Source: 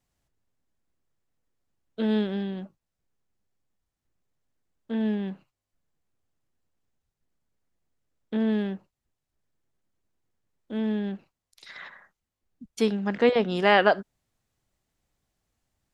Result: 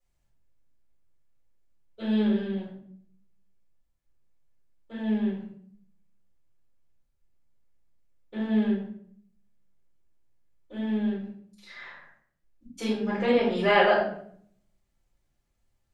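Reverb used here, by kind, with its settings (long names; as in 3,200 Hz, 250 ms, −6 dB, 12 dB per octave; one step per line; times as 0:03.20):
rectangular room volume 97 cubic metres, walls mixed, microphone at 4.5 metres
level −16 dB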